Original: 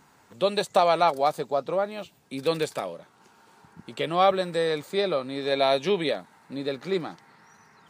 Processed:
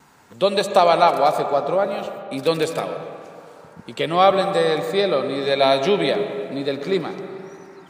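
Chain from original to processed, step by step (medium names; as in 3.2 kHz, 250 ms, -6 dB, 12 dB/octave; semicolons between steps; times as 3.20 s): gate with hold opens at -49 dBFS; reverberation RT60 2.5 s, pre-delay 50 ms, DRR 7.5 dB; trim +5.5 dB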